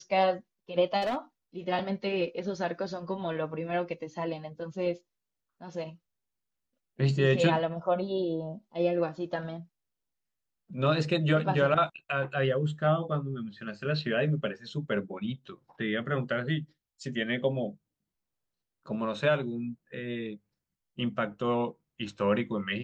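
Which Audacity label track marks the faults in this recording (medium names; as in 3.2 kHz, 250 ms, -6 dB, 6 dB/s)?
1.010000	1.170000	clipped -26 dBFS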